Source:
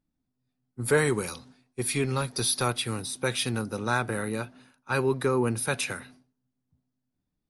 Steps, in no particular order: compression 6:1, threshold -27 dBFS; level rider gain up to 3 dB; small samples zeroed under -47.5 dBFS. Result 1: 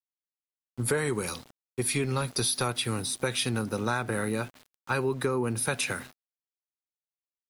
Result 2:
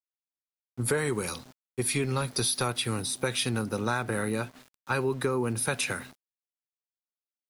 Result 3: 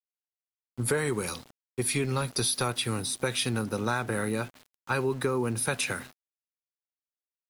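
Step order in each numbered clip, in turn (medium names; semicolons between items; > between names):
small samples zeroed > compression > level rider; compression > level rider > small samples zeroed; compression > small samples zeroed > level rider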